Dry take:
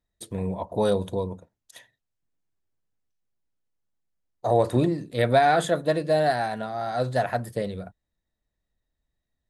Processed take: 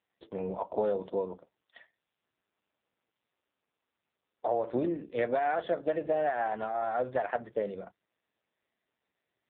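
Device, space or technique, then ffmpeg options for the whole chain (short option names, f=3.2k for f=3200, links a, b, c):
voicemail: -af "highpass=310,lowpass=3k,acompressor=threshold=-24dB:ratio=12" -ar 8000 -c:a libopencore_amrnb -b:a 5900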